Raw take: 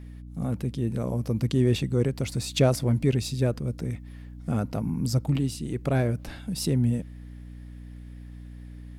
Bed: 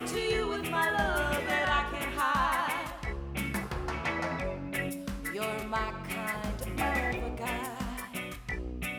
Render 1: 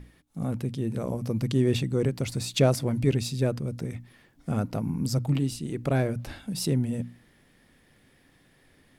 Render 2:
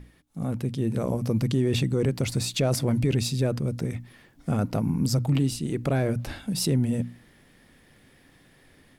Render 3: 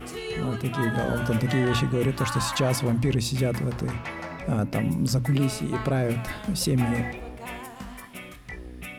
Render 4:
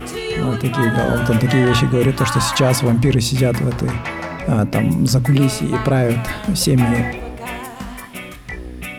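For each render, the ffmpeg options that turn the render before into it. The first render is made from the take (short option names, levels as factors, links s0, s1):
-af "bandreject=f=60:t=h:w=6,bandreject=f=120:t=h:w=6,bandreject=f=180:t=h:w=6,bandreject=f=240:t=h:w=6,bandreject=f=300:t=h:w=6"
-af "alimiter=limit=0.106:level=0:latency=1:release=15,dynaudnorm=f=470:g=3:m=1.58"
-filter_complex "[1:a]volume=0.708[s0];[0:a][s0]amix=inputs=2:normalize=0"
-af "volume=2.82"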